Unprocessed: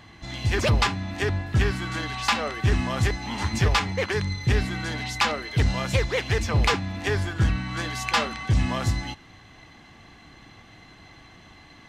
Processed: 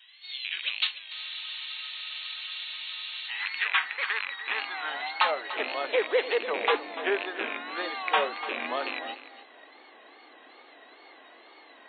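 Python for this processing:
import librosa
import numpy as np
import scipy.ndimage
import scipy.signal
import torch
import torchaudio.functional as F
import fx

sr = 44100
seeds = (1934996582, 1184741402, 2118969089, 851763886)

p1 = fx.rattle_buzz(x, sr, strikes_db=-24.0, level_db=-17.0)
p2 = fx.rider(p1, sr, range_db=3, speed_s=0.5)
p3 = p1 + F.gain(torch.from_numpy(p2), -2.0).numpy()
p4 = fx.brickwall_bandpass(p3, sr, low_hz=220.0, high_hz=4100.0)
p5 = fx.wow_flutter(p4, sr, seeds[0], rate_hz=2.1, depth_cents=120.0)
p6 = fx.filter_sweep_highpass(p5, sr, from_hz=3200.0, to_hz=470.0, start_s=2.61, end_s=5.79, q=2.0)
p7 = p6 + fx.echo_single(p6, sr, ms=293, db=-14.0, dry=0)
p8 = fx.spec_freeze(p7, sr, seeds[1], at_s=1.14, hold_s=2.14)
y = F.gain(torch.from_numpy(p8), -8.0).numpy()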